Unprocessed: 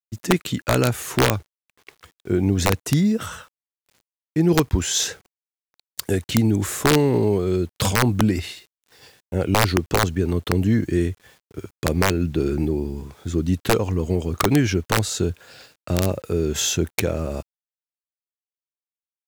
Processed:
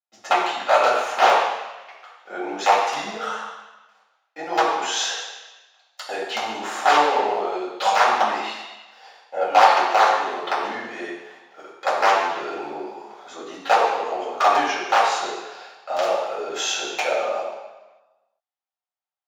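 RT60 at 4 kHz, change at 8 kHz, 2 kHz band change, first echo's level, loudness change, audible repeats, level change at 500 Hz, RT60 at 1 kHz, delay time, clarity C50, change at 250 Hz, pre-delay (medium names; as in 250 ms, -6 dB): 1.2 s, -6.0 dB, +4.0 dB, no echo, +0.5 dB, no echo, 0.0 dB, 1.2 s, no echo, 1.0 dB, -15.0 dB, 3 ms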